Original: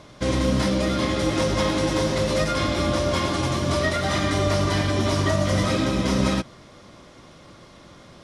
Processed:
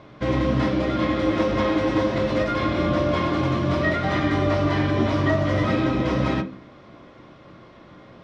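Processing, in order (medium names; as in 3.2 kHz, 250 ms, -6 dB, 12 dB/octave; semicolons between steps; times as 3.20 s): low-pass 2.7 kHz 12 dB/octave; bass shelf 130 Hz -4.5 dB; on a send: reverberation RT60 0.40 s, pre-delay 3 ms, DRR 5.5 dB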